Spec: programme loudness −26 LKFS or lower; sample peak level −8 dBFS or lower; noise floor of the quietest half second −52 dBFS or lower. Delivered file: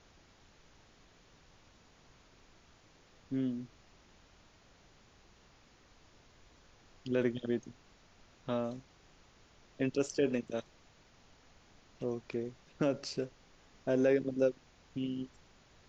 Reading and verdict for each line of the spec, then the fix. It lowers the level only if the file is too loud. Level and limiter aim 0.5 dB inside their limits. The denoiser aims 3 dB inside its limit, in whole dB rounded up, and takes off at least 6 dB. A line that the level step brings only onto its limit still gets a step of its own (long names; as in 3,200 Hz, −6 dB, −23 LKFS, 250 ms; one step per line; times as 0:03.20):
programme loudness −35.5 LKFS: in spec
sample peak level −17.5 dBFS: in spec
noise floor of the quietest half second −63 dBFS: in spec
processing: no processing needed